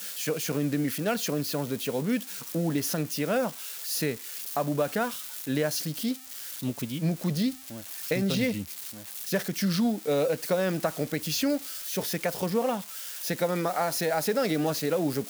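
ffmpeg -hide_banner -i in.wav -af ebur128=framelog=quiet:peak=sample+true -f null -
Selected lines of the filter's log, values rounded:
Integrated loudness:
  I:         -28.9 LUFS
  Threshold: -38.9 LUFS
Loudness range:
  LRA:         2.4 LU
  Threshold: -49.1 LUFS
  LRA low:   -30.3 LUFS
  LRA high:  -28.0 LUFS
Sample peak:
  Peak:      -12.8 dBFS
True peak:
  Peak:      -12.8 dBFS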